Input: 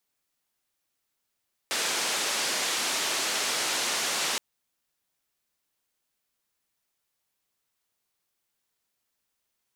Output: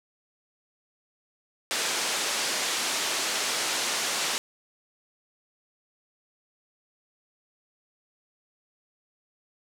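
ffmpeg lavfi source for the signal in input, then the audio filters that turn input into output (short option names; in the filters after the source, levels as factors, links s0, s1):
-f lavfi -i "anoisesrc=c=white:d=2.67:r=44100:seed=1,highpass=f=290,lowpass=f=7000,volume=-18.7dB"
-af "aeval=exprs='val(0)*gte(abs(val(0)),0.00282)':c=same"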